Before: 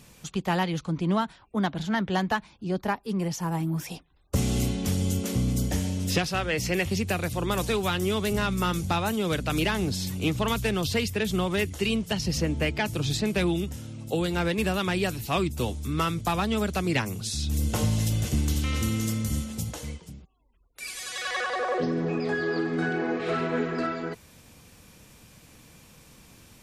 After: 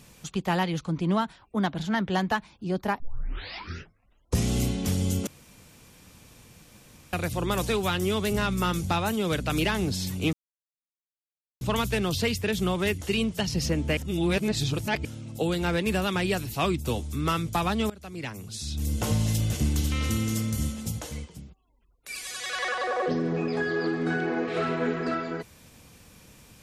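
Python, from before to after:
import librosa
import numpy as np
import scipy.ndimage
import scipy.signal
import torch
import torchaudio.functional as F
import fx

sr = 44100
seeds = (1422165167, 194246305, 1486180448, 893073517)

y = fx.edit(x, sr, fx.tape_start(start_s=3.0, length_s=1.5),
    fx.room_tone_fill(start_s=5.27, length_s=1.86),
    fx.insert_silence(at_s=10.33, length_s=1.28),
    fx.reverse_span(start_s=12.69, length_s=1.08),
    fx.fade_in_from(start_s=16.62, length_s=1.28, floor_db=-21.0), tone=tone)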